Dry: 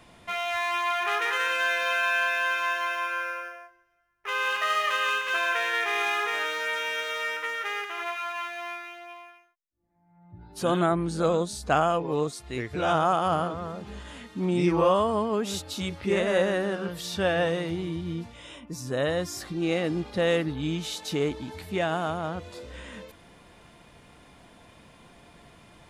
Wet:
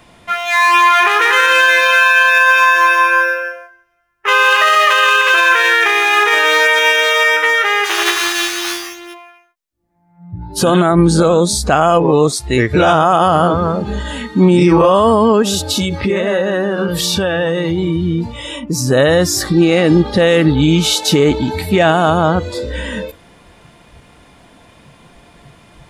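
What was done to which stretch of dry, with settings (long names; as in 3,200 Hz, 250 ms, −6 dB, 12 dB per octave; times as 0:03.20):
0:07.84–0:09.13: ceiling on every frequency bin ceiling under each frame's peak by 22 dB
0:15.42–0:18.88: downward compressor, threshold −32 dBFS
whole clip: noise reduction from a noise print of the clip's start 12 dB; boost into a limiter +21 dB; every ending faded ahead of time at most 400 dB per second; level −1 dB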